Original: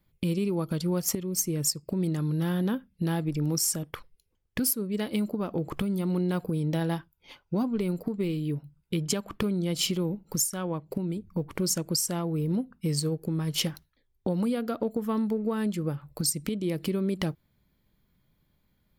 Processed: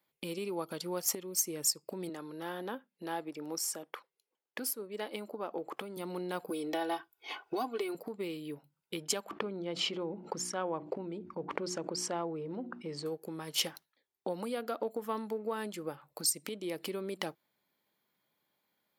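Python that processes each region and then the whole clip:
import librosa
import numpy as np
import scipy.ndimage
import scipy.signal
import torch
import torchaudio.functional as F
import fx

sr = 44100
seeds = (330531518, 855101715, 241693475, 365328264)

y = fx.chain(x, sr, fx.highpass(hz=230.0, slope=12),
    fx.high_shelf(hz=3100.0, db=-7.0), at=(2.09, 5.97))
y = fx.chain(y, sr, fx.bass_treble(bass_db=-6, treble_db=-2),
    fx.comb(ms=2.7, depth=0.86),
    fx.band_squash(depth_pct=100), at=(6.5, 7.95))
y = fx.chain(y, sr, fx.spacing_loss(db_at_10k=28),
    fx.hum_notches(base_hz=60, count=6),
    fx.env_flatten(amount_pct=70), at=(9.31, 13.06))
y = scipy.signal.sosfilt(scipy.signal.butter(2, 430.0, 'highpass', fs=sr, output='sos'), y)
y = fx.peak_eq(y, sr, hz=820.0, db=3.5, octaves=0.37)
y = y * librosa.db_to_amplitude(-2.5)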